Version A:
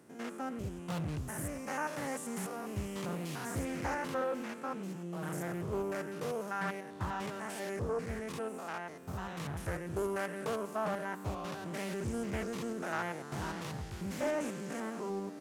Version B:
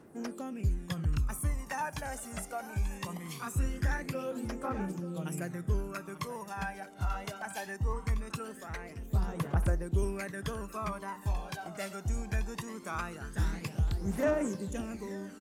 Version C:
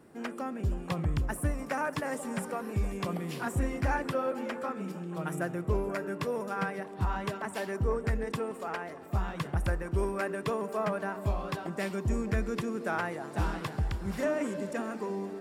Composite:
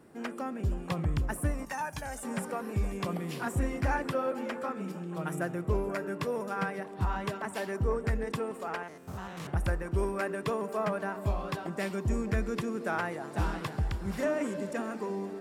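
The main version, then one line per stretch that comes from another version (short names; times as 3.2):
C
1.65–2.23 from B
8.83–9.47 from A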